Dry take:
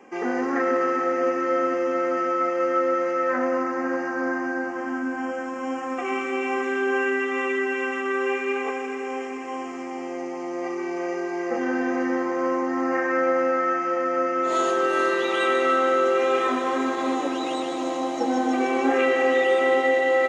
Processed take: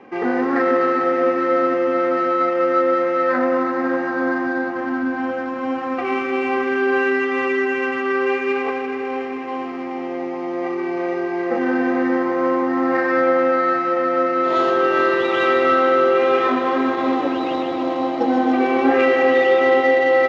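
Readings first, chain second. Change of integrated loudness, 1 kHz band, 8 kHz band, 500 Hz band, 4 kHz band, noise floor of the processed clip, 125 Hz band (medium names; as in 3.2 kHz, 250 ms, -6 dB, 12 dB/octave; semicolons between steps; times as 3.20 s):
+5.0 dB, +5.0 dB, no reading, +5.0 dB, +2.5 dB, -26 dBFS, +9.0 dB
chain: median filter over 9 samples; low-pass 4.6 kHz 24 dB/octave; peaking EQ 110 Hz +14 dB 0.64 oct; trim +5 dB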